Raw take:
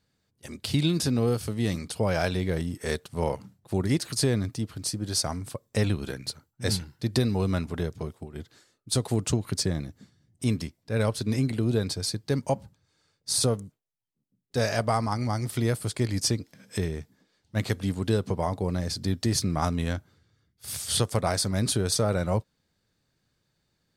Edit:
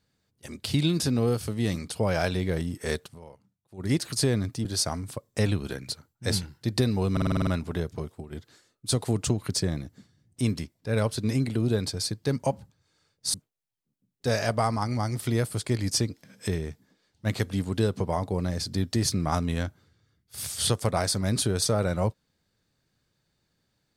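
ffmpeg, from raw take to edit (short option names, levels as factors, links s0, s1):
-filter_complex "[0:a]asplit=12[s0][s1][s2][s3][s4][s5][s6][s7][s8][s9][s10][s11];[s0]atrim=end=3.19,asetpts=PTS-STARTPTS,afade=t=out:st=3.06:d=0.13:silence=0.1[s12];[s1]atrim=start=3.19:end=3.77,asetpts=PTS-STARTPTS,volume=0.1[s13];[s2]atrim=start=3.77:end=4.652,asetpts=PTS-STARTPTS,afade=t=in:d=0.13:silence=0.1[s14];[s3]atrim=start=5.028:end=7.552[s15];[s4]atrim=start=7.498:end=7.552[s16];[s5]atrim=start=7.498:end=7.552[s17];[s6]atrim=start=7.498:end=7.552[s18];[s7]atrim=start=7.498:end=7.552[s19];[s8]atrim=start=7.498:end=7.552[s20];[s9]atrim=start=7.498:end=7.552[s21];[s10]atrim=start=7.498:end=13.372[s22];[s11]atrim=start=13.638[s23];[s12][s13][s14]concat=n=3:v=0:a=1[s24];[s24][s15]acrossfade=d=0.004:c1=hsin:c2=hsin[s25];[s25][s16]acrossfade=d=0.004:c1=hsin:c2=hsin[s26];[s26][s17]acrossfade=d=0.004:c1=hsin:c2=hsin[s27];[s27][s18]acrossfade=d=0.004:c1=hsin:c2=hsin[s28];[s28][s19]acrossfade=d=0.004:c1=hsin:c2=hsin[s29];[s29][s20]acrossfade=d=0.004:c1=hsin:c2=hsin[s30];[s30][s21]acrossfade=d=0.004:c1=hsin:c2=hsin[s31];[s31][s22]acrossfade=d=0.004:c1=hsin:c2=hsin[s32];[s32][s23]acrossfade=d=0.004:c1=hsin:c2=hsin"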